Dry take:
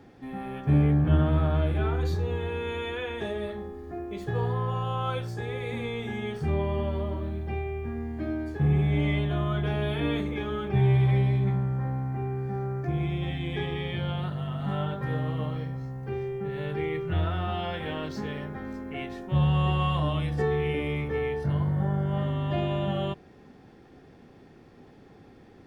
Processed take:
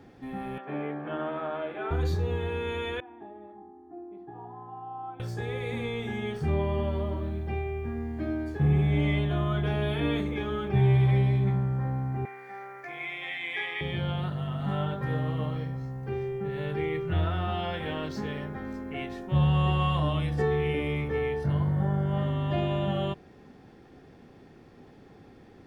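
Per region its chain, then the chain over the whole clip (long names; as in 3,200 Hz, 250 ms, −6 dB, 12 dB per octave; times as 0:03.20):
0:00.58–0:01.91: high-pass filter 160 Hz 24 dB per octave + three-way crossover with the lows and the highs turned down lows −18 dB, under 360 Hz, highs −23 dB, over 3,200 Hz
0:03.00–0:05.20: pair of resonant band-passes 500 Hz, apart 1.3 octaves + high-frequency loss of the air 160 metres
0:12.25–0:13.81: high-pass filter 760 Hz + parametric band 2,100 Hz +12.5 dB 0.45 octaves
whole clip: no processing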